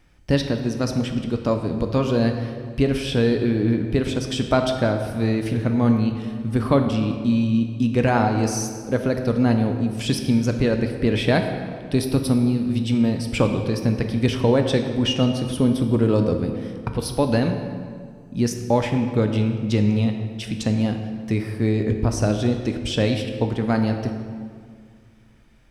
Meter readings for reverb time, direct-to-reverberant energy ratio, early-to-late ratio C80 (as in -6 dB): 2.1 s, 5.0 dB, 7.5 dB